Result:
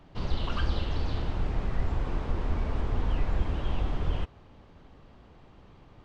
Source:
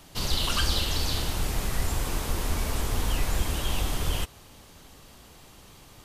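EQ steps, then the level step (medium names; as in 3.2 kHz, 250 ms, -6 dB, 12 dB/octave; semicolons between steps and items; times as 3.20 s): tape spacing loss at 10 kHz 39 dB; 0.0 dB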